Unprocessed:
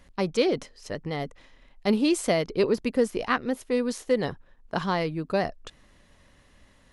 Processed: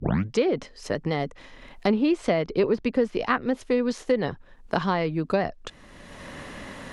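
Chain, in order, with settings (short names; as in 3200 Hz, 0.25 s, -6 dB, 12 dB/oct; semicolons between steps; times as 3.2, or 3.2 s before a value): tape start at the beginning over 0.39 s; treble ducked by the level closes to 2700 Hz, closed at -20 dBFS; three-band squash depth 70%; gain +1.5 dB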